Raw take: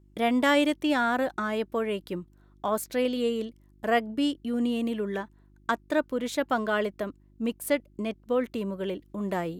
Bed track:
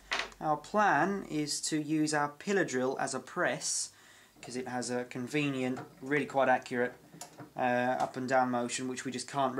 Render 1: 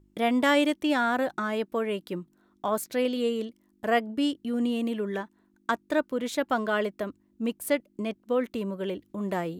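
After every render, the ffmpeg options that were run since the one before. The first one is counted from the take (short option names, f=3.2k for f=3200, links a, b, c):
-af "bandreject=f=50:t=h:w=4,bandreject=f=100:t=h:w=4,bandreject=f=150:t=h:w=4"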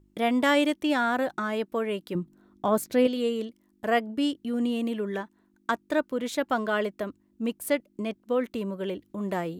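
-filter_complex "[0:a]asettb=1/sr,asplit=3[a][b][c];[a]atrim=end=2.154[d];[b]atrim=start=2.15:end=3.07,asetpts=PTS-STARTPTS,afade=t=in:d=0.004:c=qsin,afade=t=out:st=0.916:d=0.004:c=qsin,lowshelf=f=490:g=8.5[e];[c]atrim=start=3.066[f];[d][e]acrossfade=d=0.004:c1=hsin:c2=qsin[g];[g][f]acrossfade=d=0.004:c1=qsin:c2=hsin"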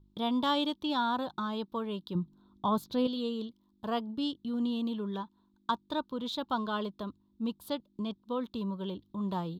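-af "firequalizer=gain_entry='entry(180,0);entry(280,-7);entry(660,-12);entry(950,2);entry(2000,-23);entry(3600,5);entry(5700,-10);entry(8500,-19);entry(13000,-12)':delay=0.05:min_phase=1"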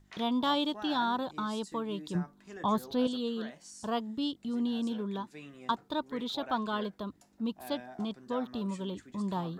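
-filter_complex "[1:a]volume=-17dB[a];[0:a][a]amix=inputs=2:normalize=0"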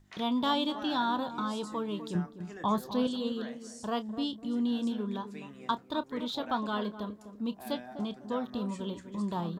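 -filter_complex "[0:a]asplit=2[a][b];[b]adelay=29,volume=-13.5dB[c];[a][c]amix=inputs=2:normalize=0,asplit=2[d][e];[e]adelay=251,lowpass=f=870:p=1,volume=-10dB,asplit=2[f][g];[g]adelay=251,lowpass=f=870:p=1,volume=0.33,asplit=2[h][i];[i]adelay=251,lowpass=f=870:p=1,volume=0.33,asplit=2[j][k];[k]adelay=251,lowpass=f=870:p=1,volume=0.33[l];[f][h][j][l]amix=inputs=4:normalize=0[m];[d][m]amix=inputs=2:normalize=0"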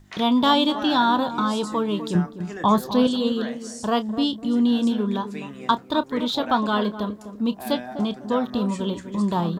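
-af "volume=10.5dB"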